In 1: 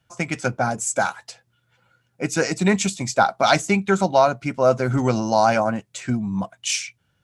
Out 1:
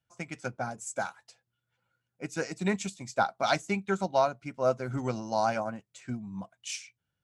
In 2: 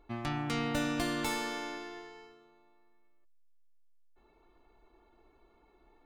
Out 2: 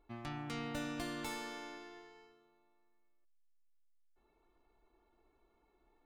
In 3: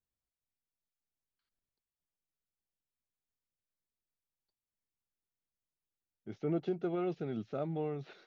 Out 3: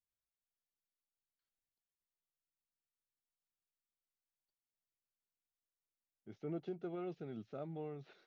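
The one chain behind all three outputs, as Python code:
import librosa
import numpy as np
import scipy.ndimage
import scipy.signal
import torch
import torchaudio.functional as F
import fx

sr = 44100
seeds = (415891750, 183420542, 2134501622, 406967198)

y = fx.upward_expand(x, sr, threshold_db=-28.0, expansion=1.5)
y = y * librosa.db_to_amplitude(-8.5)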